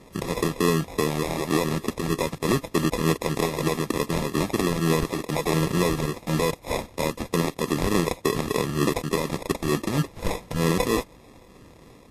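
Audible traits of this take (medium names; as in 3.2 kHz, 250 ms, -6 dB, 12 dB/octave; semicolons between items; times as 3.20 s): a buzz of ramps at a fixed pitch in blocks of 8 samples; phasing stages 4, 3.3 Hz, lowest notch 450–1800 Hz; aliases and images of a low sample rate 1.5 kHz, jitter 0%; Vorbis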